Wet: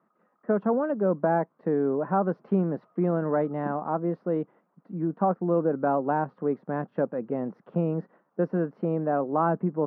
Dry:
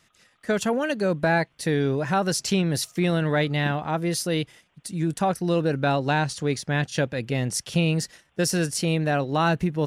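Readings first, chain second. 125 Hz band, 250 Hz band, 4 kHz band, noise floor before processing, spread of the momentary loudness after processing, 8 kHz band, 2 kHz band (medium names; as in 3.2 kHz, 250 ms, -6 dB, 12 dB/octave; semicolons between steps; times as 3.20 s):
-7.0 dB, -2.0 dB, under -35 dB, -65 dBFS, 7 LU, under -40 dB, -13.0 dB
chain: elliptic band-pass 190–1200 Hz, stop band 70 dB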